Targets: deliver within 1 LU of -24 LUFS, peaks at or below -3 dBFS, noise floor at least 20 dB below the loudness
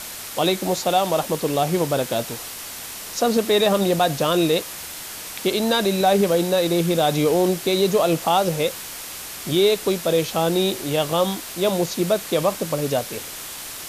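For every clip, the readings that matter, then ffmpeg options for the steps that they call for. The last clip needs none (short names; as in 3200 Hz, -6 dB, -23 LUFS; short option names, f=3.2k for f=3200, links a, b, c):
noise floor -35 dBFS; noise floor target -41 dBFS; loudness -21.0 LUFS; peak -7.0 dBFS; loudness target -24.0 LUFS
-> -af "afftdn=nr=6:nf=-35"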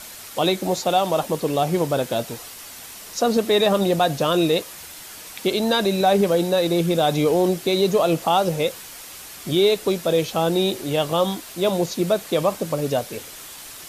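noise floor -39 dBFS; noise floor target -41 dBFS
-> -af "afftdn=nr=6:nf=-39"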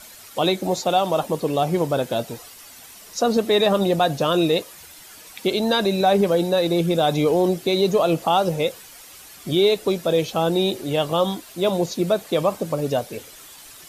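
noise floor -44 dBFS; loudness -21.0 LUFS; peak -7.0 dBFS; loudness target -24.0 LUFS
-> -af "volume=-3dB"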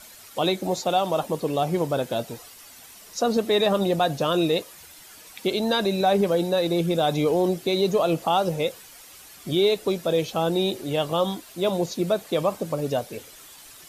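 loudness -24.0 LUFS; peak -10.0 dBFS; noise floor -47 dBFS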